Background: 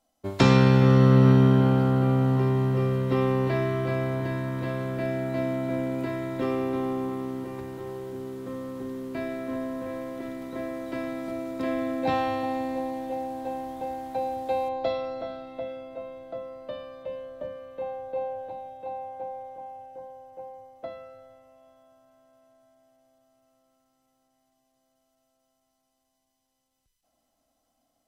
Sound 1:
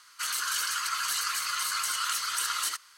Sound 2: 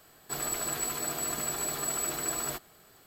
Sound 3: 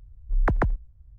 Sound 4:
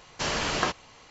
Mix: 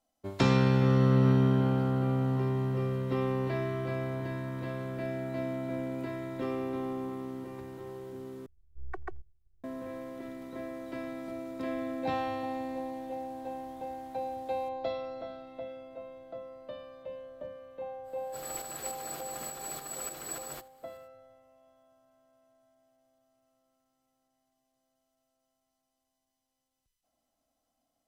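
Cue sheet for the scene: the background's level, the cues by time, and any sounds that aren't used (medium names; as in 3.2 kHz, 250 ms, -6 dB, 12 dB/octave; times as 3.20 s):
background -6.5 dB
8.46 s: replace with 3 -14 dB + robot voice 375 Hz
18.03 s: add 2 -5.5 dB, fades 0.05 s + tremolo saw up 3.4 Hz, depth 55%
not used: 1, 4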